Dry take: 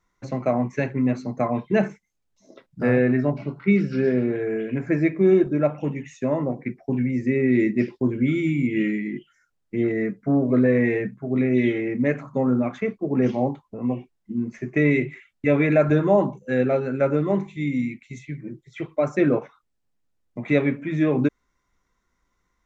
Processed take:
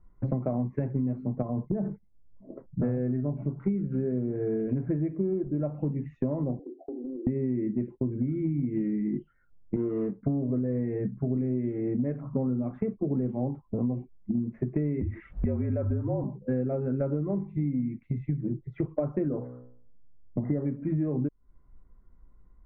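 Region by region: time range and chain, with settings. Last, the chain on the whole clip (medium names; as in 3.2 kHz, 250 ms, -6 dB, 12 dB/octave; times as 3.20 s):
1.42–2.81 s: compression, threshold -23 dBFS + Gaussian low-pass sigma 5.3 samples
6.59–7.27 s: Chebyshev band-pass 280–800 Hz, order 5 + compression 10:1, threshold -39 dBFS
9.76–10.23 s: median filter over 41 samples + tone controls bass -11 dB, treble -1 dB
15.01–16.24 s: upward compressor, threshold -20 dBFS + frequency shift -48 Hz
19.28–20.66 s: brick-wall FIR low-pass 2.1 kHz + de-hum 61.55 Hz, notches 31
whole clip: low-pass 1.3 kHz 12 dB/octave; tilt EQ -4 dB/octave; compression 16:1, threshold -25 dBFS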